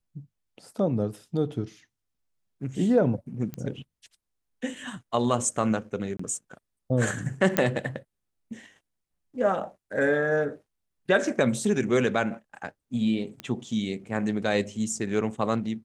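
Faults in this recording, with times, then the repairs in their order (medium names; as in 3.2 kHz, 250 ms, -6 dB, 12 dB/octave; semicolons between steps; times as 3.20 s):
3.54 s: pop -20 dBFS
6.17–6.19 s: dropout 24 ms
7.57 s: pop -6 dBFS
13.40 s: pop -20 dBFS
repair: de-click; interpolate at 6.17 s, 24 ms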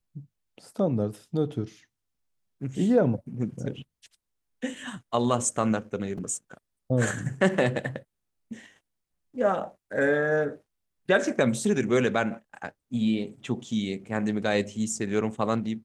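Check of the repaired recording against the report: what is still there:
nothing left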